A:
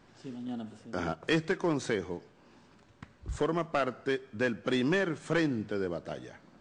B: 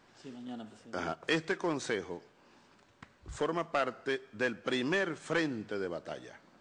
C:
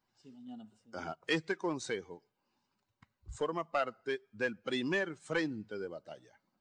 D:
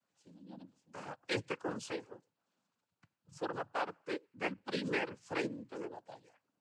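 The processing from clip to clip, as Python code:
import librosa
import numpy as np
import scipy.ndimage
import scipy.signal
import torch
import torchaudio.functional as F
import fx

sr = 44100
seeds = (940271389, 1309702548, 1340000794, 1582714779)

y1 = fx.low_shelf(x, sr, hz=290.0, db=-9.5)
y2 = fx.bin_expand(y1, sr, power=1.5)
y3 = fx.noise_vocoder(y2, sr, seeds[0], bands=8)
y3 = y3 * librosa.db_to_amplitude(-3.0)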